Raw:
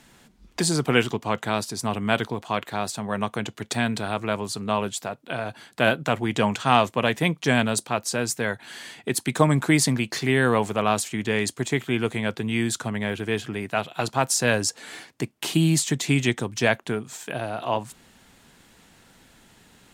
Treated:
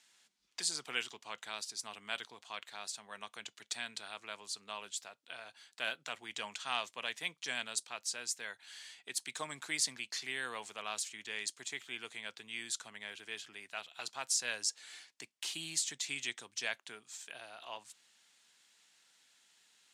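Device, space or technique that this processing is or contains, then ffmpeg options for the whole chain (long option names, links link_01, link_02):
piezo pickup straight into a mixer: -af "lowpass=5800,aderivative,volume=-2.5dB"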